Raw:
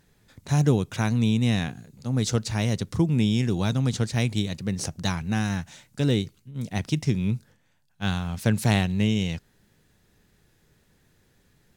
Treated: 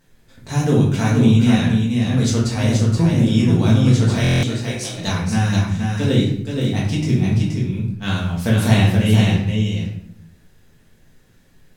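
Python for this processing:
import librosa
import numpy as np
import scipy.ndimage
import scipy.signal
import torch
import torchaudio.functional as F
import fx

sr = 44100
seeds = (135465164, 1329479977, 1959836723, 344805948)

y = fx.band_shelf(x, sr, hz=3500.0, db=-8.5, octaves=1.7, at=(2.7, 3.28))
y = fx.highpass(y, sr, hz=350.0, slope=24, at=(4.18, 4.91), fade=0.02)
y = y + 10.0 ** (-4.5 / 20.0) * np.pad(y, (int(476 * sr / 1000.0), 0))[:len(y)]
y = fx.room_shoebox(y, sr, seeds[0], volume_m3=120.0, walls='mixed', distance_m=1.6)
y = fx.buffer_glitch(y, sr, at_s=(4.22,), block=1024, repeats=8)
y = y * 10.0 ** (-1.0 / 20.0)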